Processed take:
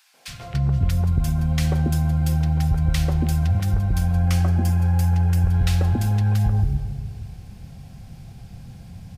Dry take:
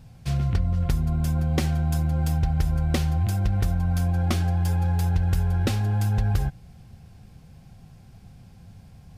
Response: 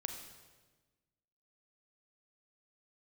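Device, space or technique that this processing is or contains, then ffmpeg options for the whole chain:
ducked reverb: -filter_complex "[0:a]asplit=3[link_01][link_02][link_03];[1:a]atrim=start_sample=2205[link_04];[link_02][link_04]afir=irnorm=-1:irlink=0[link_05];[link_03]apad=whole_len=404587[link_06];[link_05][link_06]sidechaincompress=threshold=-30dB:ratio=8:attack=16:release=201,volume=4.5dB[link_07];[link_01][link_07]amix=inputs=2:normalize=0,asettb=1/sr,asplit=3[link_08][link_09][link_10];[link_08]atrim=end=4.194[link_11];[link_09]atrim=start=4.19:end=5.51,asetpts=PTS-STARTPTS,afade=type=in:duration=0.004:curve=qsin,afade=type=out:start_time=1.316:duration=0.004:curve=qsin,equalizer=frequency=3700:width_type=o:width=0.37:gain=-7[link_12];[link_10]atrim=start=5.506[link_13];[link_11][link_12]acrossfade=duration=0.004:curve1=hsin:curve2=qsin[link_14];[link_14][link_13]acrossfade=duration=0.004:curve1=qsin:curve2=hsin,acrossover=split=390|1200[link_15][link_16][link_17];[link_16]adelay=140[link_18];[link_15]adelay=280[link_19];[link_19][link_18][link_17]amix=inputs=3:normalize=0"

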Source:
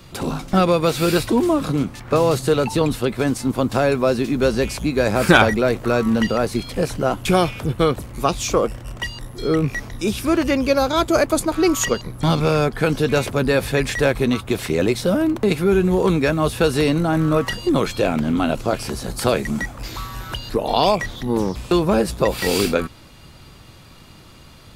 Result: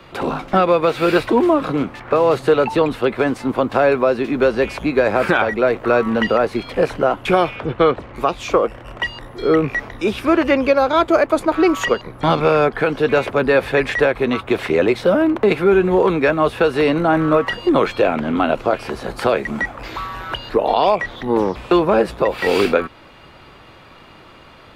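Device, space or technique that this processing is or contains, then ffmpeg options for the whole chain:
DJ mixer with the lows and highs turned down: -filter_complex "[0:a]asettb=1/sr,asplit=3[link_01][link_02][link_03];[link_01]atrim=end=7.564[link_04];[link_02]atrim=start=7.56:end=8.16,asetpts=PTS-STARTPTS,afade=type=in:duration=0.004:curve=qsin,afade=type=out:start_time=0.596:duration=0.004:curve=qsin,lowpass=5400[link_05];[link_03]atrim=start=8.156[link_06];[link_04][link_05]acrossfade=duration=0.004:curve1=hsin:curve2=qsin[link_07];[link_07][link_06]acrossfade=duration=0.004:curve1=qsin:curve2=hsin,acrossover=split=320 3100:gain=0.251 1 0.112[link_08][link_09][link_10];[link_08][link_09][link_10]amix=inputs=3:normalize=0,alimiter=limit=-11.5dB:level=0:latency=1:release=357,volume=7dB"

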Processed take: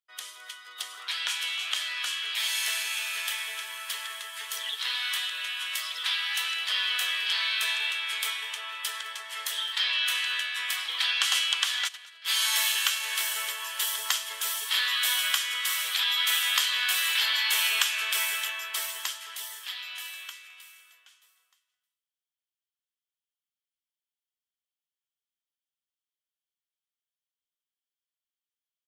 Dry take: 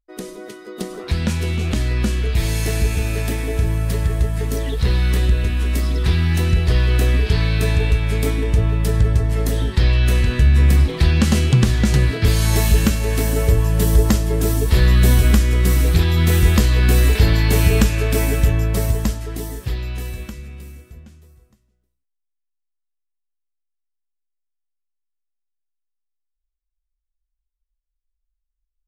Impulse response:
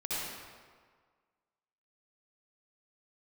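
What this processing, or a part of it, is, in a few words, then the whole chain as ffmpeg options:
headphones lying on a table: -filter_complex "[0:a]highpass=frequency=1100:width=0.5412,highpass=frequency=1100:width=1.3066,equalizer=frequency=3200:width_type=o:width=0.3:gain=11.5,asplit=3[link_01][link_02][link_03];[link_01]afade=type=out:start_time=11.87:duration=0.02[link_04];[link_02]agate=range=-21dB:threshold=-22dB:ratio=16:detection=peak,afade=type=in:start_time=11.87:duration=0.02,afade=type=out:start_time=12.27:duration=0.02[link_05];[link_03]afade=type=in:start_time=12.27:duration=0.02[link_06];[link_04][link_05][link_06]amix=inputs=3:normalize=0,aecho=1:1:213:0.0841,volume=-1.5dB"

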